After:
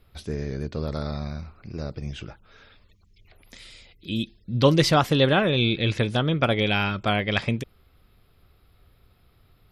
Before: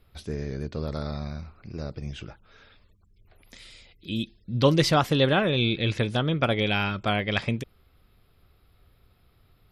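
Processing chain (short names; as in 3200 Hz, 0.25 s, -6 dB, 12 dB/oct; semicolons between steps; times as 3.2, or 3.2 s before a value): spectral gain 2.9–3.32, 1800–7000 Hz +12 dB; gain +2 dB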